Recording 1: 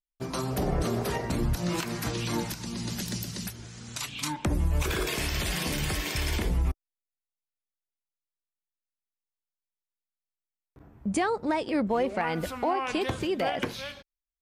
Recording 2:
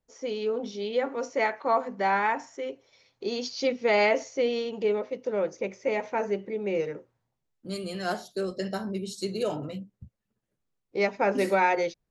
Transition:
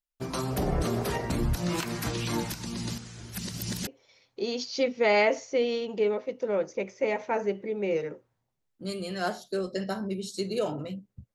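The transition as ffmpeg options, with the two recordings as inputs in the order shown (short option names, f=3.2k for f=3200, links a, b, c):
-filter_complex "[0:a]apad=whole_dur=11.34,atrim=end=11.34,asplit=2[a][b];[a]atrim=end=2.982[c];[b]atrim=start=2.978:end=3.872,asetpts=PTS-STARTPTS,areverse[d];[1:a]atrim=start=2.708:end=10.18[e];[c][d]acrossfade=d=0.004:c1=hsin:c2=hsin[f];[f][e]acrossfade=d=0.004:c1=hsin:c2=hsin"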